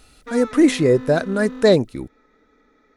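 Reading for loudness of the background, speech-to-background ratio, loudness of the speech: -35.0 LUFS, 17.0 dB, -18.0 LUFS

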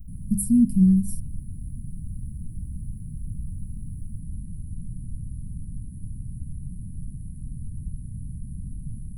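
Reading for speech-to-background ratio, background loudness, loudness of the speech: 17.0 dB, -38.0 LUFS, -21.0 LUFS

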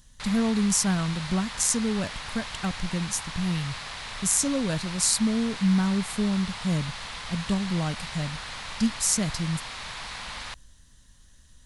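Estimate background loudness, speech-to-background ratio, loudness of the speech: -36.0 LUFS, 9.5 dB, -26.5 LUFS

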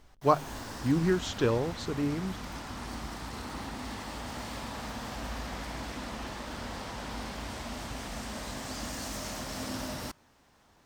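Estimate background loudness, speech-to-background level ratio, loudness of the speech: -39.0 LUFS, 9.0 dB, -30.0 LUFS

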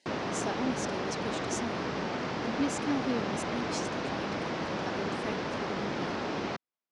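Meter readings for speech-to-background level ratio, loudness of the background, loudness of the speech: -4.5 dB, -34.0 LUFS, -38.5 LUFS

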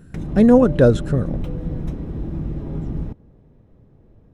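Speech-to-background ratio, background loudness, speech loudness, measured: 12.5 dB, -28.5 LUFS, -16.0 LUFS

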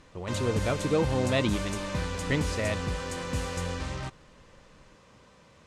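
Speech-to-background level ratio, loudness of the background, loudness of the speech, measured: 2.5 dB, -33.0 LUFS, -30.5 LUFS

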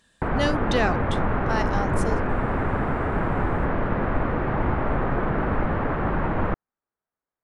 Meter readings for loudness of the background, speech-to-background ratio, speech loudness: -25.5 LUFS, -3.5 dB, -29.0 LUFS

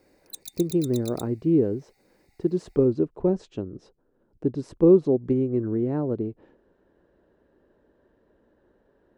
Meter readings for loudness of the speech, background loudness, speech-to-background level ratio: -24.5 LUFS, -41.0 LUFS, 16.5 dB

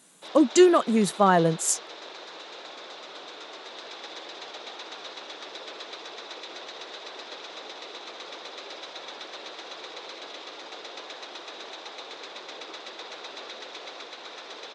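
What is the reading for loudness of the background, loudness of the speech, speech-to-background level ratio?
-39.5 LUFS, -21.5 LUFS, 18.0 dB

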